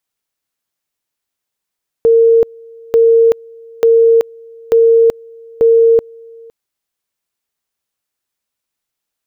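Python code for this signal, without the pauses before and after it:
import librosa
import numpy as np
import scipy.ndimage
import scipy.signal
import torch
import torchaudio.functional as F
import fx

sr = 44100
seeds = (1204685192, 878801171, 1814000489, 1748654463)

y = fx.two_level_tone(sr, hz=458.0, level_db=-5.0, drop_db=28.0, high_s=0.38, low_s=0.51, rounds=5)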